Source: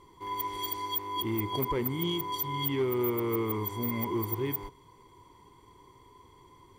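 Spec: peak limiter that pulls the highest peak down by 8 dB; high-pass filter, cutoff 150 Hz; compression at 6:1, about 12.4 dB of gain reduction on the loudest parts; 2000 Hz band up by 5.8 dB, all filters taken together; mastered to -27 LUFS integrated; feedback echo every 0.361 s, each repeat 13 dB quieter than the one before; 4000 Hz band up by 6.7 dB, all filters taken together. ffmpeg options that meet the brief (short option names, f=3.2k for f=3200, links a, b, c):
-af "highpass=150,equalizer=f=2k:t=o:g=4.5,equalizer=f=4k:t=o:g=7,acompressor=threshold=-39dB:ratio=6,alimiter=level_in=13dB:limit=-24dB:level=0:latency=1,volume=-13dB,aecho=1:1:361|722|1083:0.224|0.0493|0.0108,volume=18.5dB"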